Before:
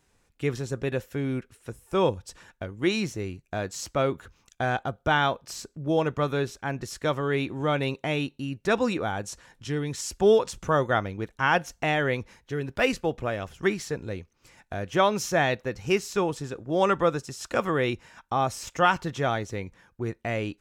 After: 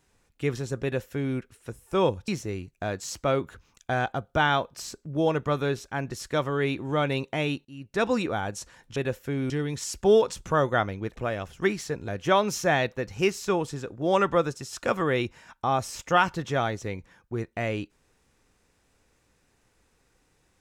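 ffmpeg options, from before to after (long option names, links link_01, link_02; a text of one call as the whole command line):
ffmpeg -i in.wav -filter_complex "[0:a]asplit=7[link_01][link_02][link_03][link_04][link_05][link_06][link_07];[link_01]atrim=end=2.282[link_08];[link_02]atrim=start=2.988:end=8.36,asetpts=PTS-STARTPTS,afade=type=out:start_time=5.368:duration=0.004:curve=hsin:silence=0.105925[link_09];[link_03]atrim=start=8.36:end=9.672,asetpts=PTS-STARTPTS,afade=type=in:duration=0.44:silence=0.105925[link_10];[link_04]atrim=start=0.828:end=1.372[link_11];[link_05]atrim=start=9.668:end=11.332[link_12];[link_06]atrim=start=13.168:end=14.092[link_13];[link_07]atrim=start=14.758[link_14];[link_09][link_10]concat=n=2:v=0:a=1[link_15];[link_08][link_15]acrossfade=duration=0.004:curve1=hsin:curve2=hsin[link_16];[link_16][link_11]acrossfade=duration=0.004:curve1=hsin:curve2=hsin[link_17];[link_17][link_12]acrossfade=duration=0.004:curve1=hsin:curve2=hsin[link_18];[link_18][link_13]acrossfade=duration=0.004:curve1=hsin:curve2=hsin[link_19];[link_19][link_14]acrossfade=duration=0.004:curve1=hsin:curve2=hsin" out.wav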